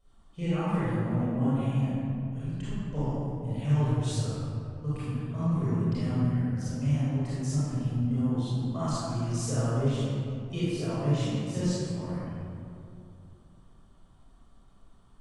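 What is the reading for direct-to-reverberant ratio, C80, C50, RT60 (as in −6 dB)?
−12.5 dB, −3.5 dB, −7.0 dB, 2.6 s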